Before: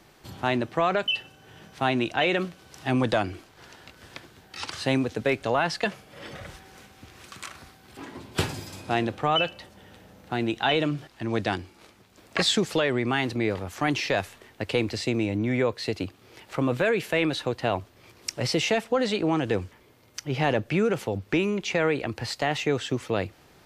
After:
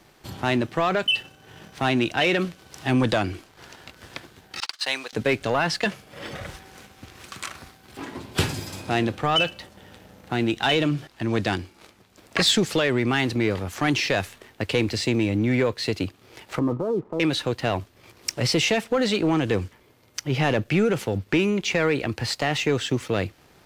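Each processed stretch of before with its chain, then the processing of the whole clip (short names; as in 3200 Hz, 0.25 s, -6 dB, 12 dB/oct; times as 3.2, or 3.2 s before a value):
4.6–5.13 gate -36 dBFS, range -26 dB + HPF 930 Hz + bell 4400 Hz +5 dB 0.65 oct
16.59–17.2 transient shaper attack -4 dB, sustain +2 dB + rippled Chebyshev low-pass 1300 Hz, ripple 6 dB
whole clip: sample leveller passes 1; dynamic EQ 740 Hz, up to -4 dB, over -36 dBFS, Q 0.78; gain +1.5 dB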